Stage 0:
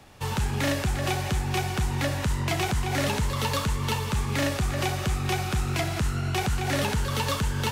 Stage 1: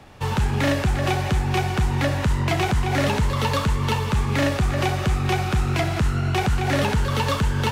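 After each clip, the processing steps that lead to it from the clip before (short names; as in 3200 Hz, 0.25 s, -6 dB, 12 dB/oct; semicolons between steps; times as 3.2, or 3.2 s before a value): high shelf 4600 Hz -9.5 dB; gain +5.5 dB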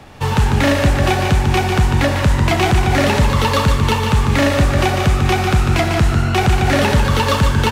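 echo 0.148 s -6 dB; gain +6.5 dB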